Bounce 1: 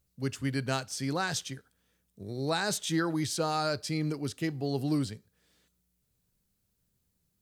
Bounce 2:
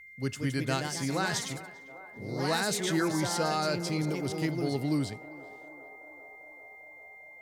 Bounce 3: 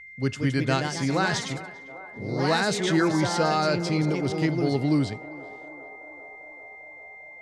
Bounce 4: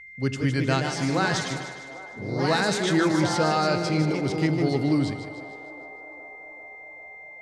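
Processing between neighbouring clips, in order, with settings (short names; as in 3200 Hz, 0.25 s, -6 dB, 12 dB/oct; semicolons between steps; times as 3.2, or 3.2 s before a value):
echoes that change speed 0.203 s, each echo +2 st, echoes 3, each echo -6 dB; narrowing echo 0.397 s, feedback 84%, band-pass 720 Hz, level -15.5 dB; whine 2100 Hz -48 dBFS
air absorption 81 m; gain +6.5 dB
split-band echo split 380 Hz, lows 82 ms, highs 0.152 s, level -9.5 dB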